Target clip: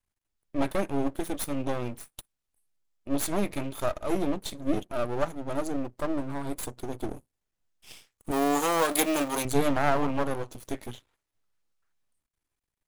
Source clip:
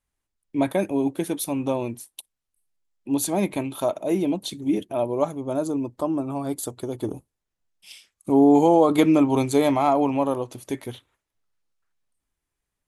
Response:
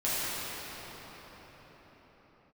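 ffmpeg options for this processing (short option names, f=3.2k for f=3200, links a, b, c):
-filter_complex "[0:a]aeval=exprs='max(val(0),0)':c=same,asettb=1/sr,asplit=3[a][b][c];[a]atrim=end=8.314[d];[b]atrim=start=8.31:end=9.45,asetpts=PTS-STARTPTS,afade=t=in:d=0.004:c=qsin,afade=t=out:st=1.136:d=0.004:c=qsin,aemphasis=mode=production:type=riaa[e];[c]atrim=start=9.446[f];[d][e]acrossfade=d=0.004:c1=hsin:c2=qsin[g];[g][f]acrossfade=d=0.004:c1=qsin:c2=hsin"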